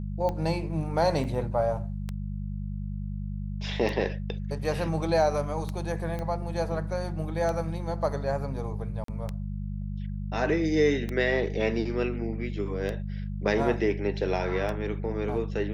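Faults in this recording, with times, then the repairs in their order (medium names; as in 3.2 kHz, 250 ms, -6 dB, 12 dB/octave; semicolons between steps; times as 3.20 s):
hum 50 Hz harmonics 4 -33 dBFS
tick 33 1/3 rpm -19 dBFS
1.24–1.25 s: dropout 5.9 ms
6.19 s: pop -22 dBFS
9.04–9.08 s: dropout 43 ms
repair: de-click; de-hum 50 Hz, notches 4; interpolate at 1.24 s, 5.9 ms; interpolate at 9.04 s, 43 ms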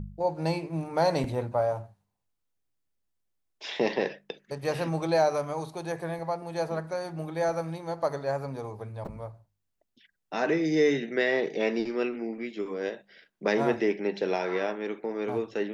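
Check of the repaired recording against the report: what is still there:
6.19 s: pop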